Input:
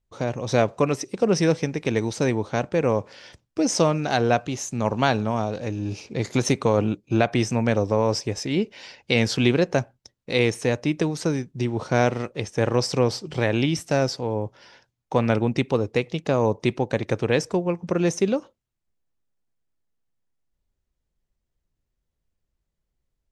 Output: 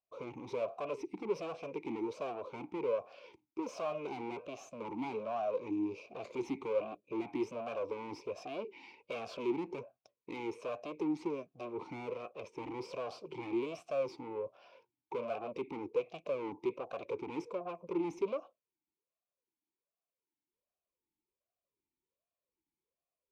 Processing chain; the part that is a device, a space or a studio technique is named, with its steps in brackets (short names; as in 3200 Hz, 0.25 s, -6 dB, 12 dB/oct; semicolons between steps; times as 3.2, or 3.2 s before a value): talk box (tube stage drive 30 dB, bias 0.5; vowel sweep a-u 1.3 Hz); gain +6 dB